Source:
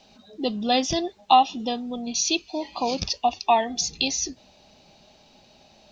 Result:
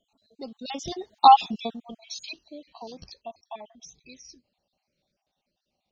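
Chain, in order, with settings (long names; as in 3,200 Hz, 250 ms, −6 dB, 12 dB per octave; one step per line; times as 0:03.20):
time-frequency cells dropped at random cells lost 43%
source passing by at 0:01.41, 18 m/s, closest 2.4 metres
level +5.5 dB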